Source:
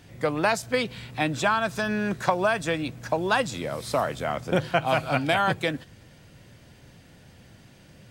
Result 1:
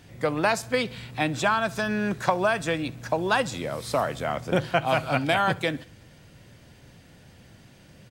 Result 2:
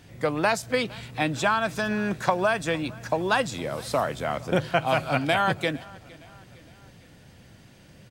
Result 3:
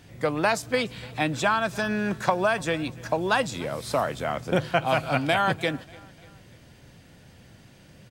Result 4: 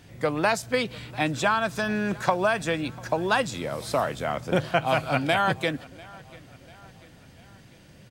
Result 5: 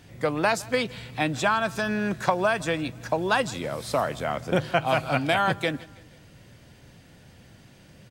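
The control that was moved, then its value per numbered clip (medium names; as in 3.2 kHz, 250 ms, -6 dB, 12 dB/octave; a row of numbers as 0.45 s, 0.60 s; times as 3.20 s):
feedback delay, time: 67 ms, 460 ms, 294 ms, 694 ms, 162 ms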